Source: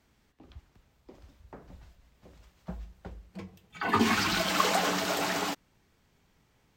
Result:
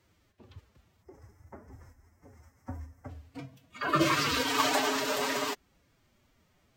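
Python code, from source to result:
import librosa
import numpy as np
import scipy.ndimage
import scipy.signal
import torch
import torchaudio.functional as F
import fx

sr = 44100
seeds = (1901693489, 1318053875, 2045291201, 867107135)

y = fx.spec_box(x, sr, start_s=1.03, length_s=2.06, low_hz=2300.0, high_hz=5000.0, gain_db=-18)
y = fx.pitch_keep_formants(y, sr, semitones=6.5)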